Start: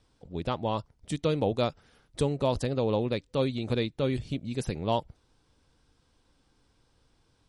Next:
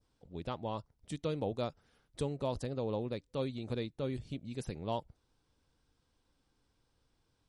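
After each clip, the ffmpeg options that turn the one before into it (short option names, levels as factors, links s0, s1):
-af "adynamicequalizer=threshold=0.00398:dfrequency=2700:dqfactor=0.97:tfrequency=2700:tqfactor=0.97:attack=5:release=100:ratio=0.375:range=2.5:mode=cutabove:tftype=bell,volume=0.376"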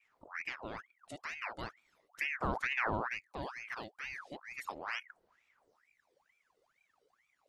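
-af "aphaser=in_gain=1:out_gain=1:delay=1.3:decay=0.64:speed=0.37:type=sinusoidal,aeval=exprs='val(0)*sin(2*PI*1400*n/s+1400*0.7/2.2*sin(2*PI*2.2*n/s))':c=same,volume=0.668"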